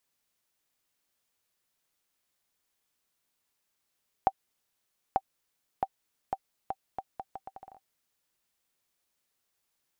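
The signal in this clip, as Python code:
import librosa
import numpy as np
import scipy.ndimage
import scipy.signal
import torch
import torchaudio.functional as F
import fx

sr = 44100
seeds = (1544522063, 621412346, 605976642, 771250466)

y = fx.bouncing_ball(sr, first_gap_s=0.89, ratio=0.75, hz=774.0, decay_ms=50.0, level_db=-11.0)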